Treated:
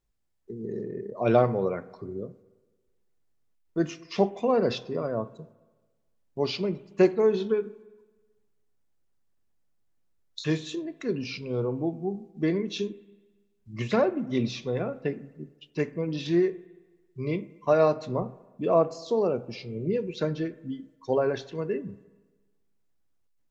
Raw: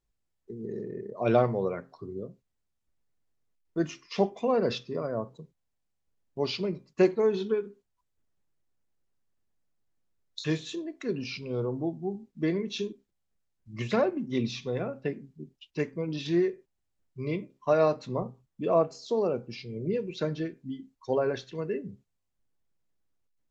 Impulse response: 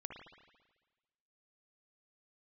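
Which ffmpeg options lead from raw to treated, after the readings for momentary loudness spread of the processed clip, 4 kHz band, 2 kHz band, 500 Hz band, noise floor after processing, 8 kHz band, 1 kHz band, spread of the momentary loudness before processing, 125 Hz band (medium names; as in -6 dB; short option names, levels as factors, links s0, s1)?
15 LU, +0.5 dB, +1.5 dB, +2.5 dB, -70 dBFS, no reading, +2.0 dB, 15 LU, +2.0 dB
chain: -filter_complex "[0:a]asplit=2[s0][s1];[1:a]atrim=start_sample=2205,lowpass=2300[s2];[s1][s2]afir=irnorm=-1:irlink=0,volume=0.299[s3];[s0][s3]amix=inputs=2:normalize=0,volume=1.12"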